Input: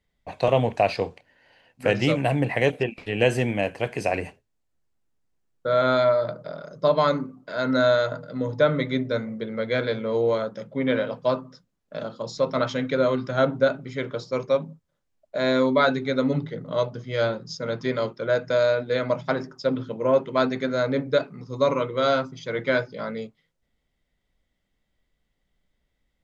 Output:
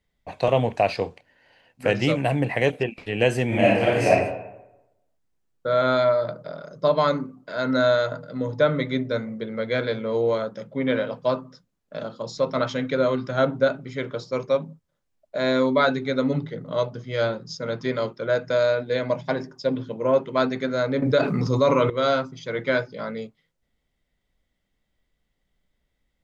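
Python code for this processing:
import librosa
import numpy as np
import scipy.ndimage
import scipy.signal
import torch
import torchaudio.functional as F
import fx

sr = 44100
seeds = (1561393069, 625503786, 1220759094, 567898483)

y = fx.reverb_throw(x, sr, start_s=3.47, length_s=0.62, rt60_s=0.95, drr_db=-7.0)
y = fx.notch(y, sr, hz=1300.0, q=5.2, at=(18.85, 19.94))
y = fx.env_flatten(y, sr, amount_pct=70, at=(21.02, 21.9))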